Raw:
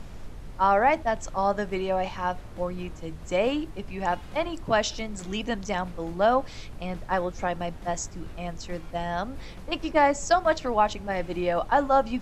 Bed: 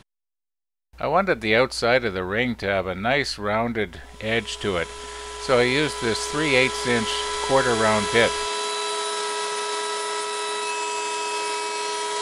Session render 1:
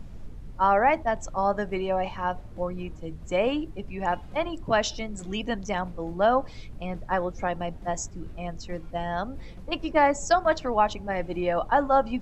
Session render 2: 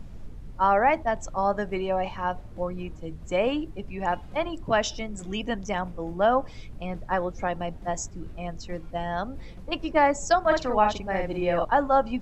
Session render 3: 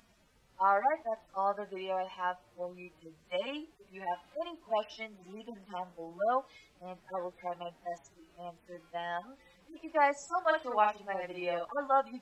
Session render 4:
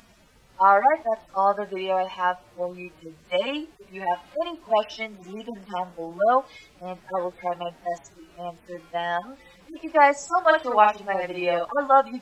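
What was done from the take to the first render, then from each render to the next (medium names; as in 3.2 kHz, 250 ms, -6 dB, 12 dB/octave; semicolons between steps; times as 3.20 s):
noise reduction 9 dB, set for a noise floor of -42 dBFS
4.73–6.68 s: band-stop 4.2 kHz, Q 8.3; 10.43–11.65 s: doubling 47 ms -3.5 dB
harmonic-percussive separation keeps harmonic; high-pass 1.4 kHz 6 dB/octave
trim +10.5 dB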